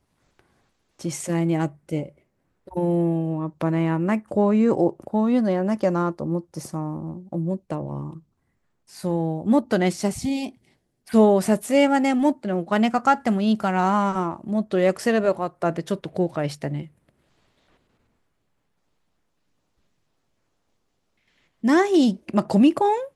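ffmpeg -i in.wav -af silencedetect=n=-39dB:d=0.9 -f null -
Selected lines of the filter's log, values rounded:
silence_start: 16.87
silence_end: 21.63 | silence_duration: 4.77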